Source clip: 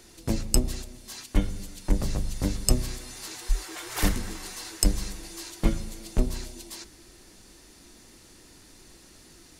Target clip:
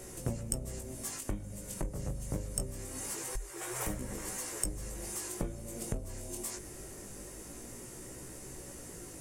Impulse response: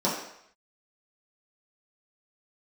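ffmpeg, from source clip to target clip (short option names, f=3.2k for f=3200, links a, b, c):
-filter_complex "[0:a]asplit=2[a][b];[b]aeval=exprs='0.251*(abs(mod(val(0)/0.251+3,4)-2)-1)':c=same,volume=-5dB[c];[a][c]amix=inputs=2:normalize=0,flanger=delay=16.5:depth=6.3:speed=0.23,asplit=2[d][e];[e]asplit=3[f][g][h];[f]bandpass=f=530:t=q:w=8,volume=0dB[i];[g]bandpass=f=1.84k:t=q:w=8,volume=-6dB[j];[h]bandpass=f=2.48k:t=q:w=8,volume=-9dB[k];[i][j][k]amix=inputs=3:normalize=0[l];[1:a]atrim=start_sample=2205[m];[l][m]afir=irnorm=-1:irlink=0,volume=-18dB[n];[d][n]amix=inputs=2:normalize=0,acompressor=threshold=-40dB:ratio=5,equalizer=f=125:t=o:w=1:g=7,equalizer=f=500:t=o:w=1:g=5,equalizer=f=4k:t=o:w=1:g=-12,equalizer=f=8k:t=o:w=1:g=8,asetrate=45938,aresample=44100,volume=2.5dB"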